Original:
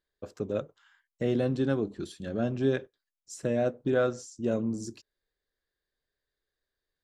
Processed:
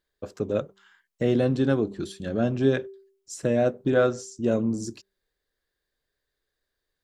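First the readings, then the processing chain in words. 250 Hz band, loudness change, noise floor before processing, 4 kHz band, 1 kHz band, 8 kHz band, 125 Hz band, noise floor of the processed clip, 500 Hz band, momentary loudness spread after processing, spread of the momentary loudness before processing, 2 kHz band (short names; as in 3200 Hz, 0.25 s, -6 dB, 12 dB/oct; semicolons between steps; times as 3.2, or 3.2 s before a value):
+5.0 dB, +5.0 dB, under -85 dBFS, +5.0 dB, +5.0 dB, +5.0 dB, +5.0 dB, -83 dBFS, +5.0 dB, 13 LU, 12 LU, +5.0 dB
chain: de-hum 194.6 Hz, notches 2; gain +5 dB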